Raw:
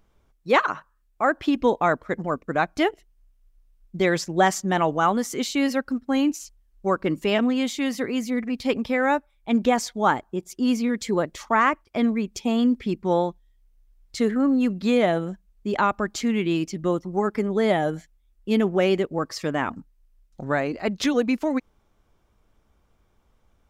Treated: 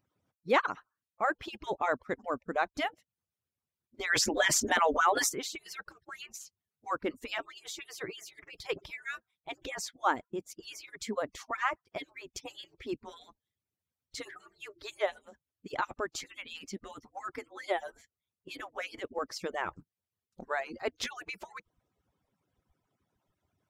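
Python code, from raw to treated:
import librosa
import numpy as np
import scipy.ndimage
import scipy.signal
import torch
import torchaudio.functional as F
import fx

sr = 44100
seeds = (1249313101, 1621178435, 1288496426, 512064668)

y = fx.hpss_only(x, sr, part='percussive')
y = fx.env_flatten(y, sr, amount_pct=70, at=(4.09, 5.28), fade=0.02)
y = y * librosa.db_to_amplitude(-7.0)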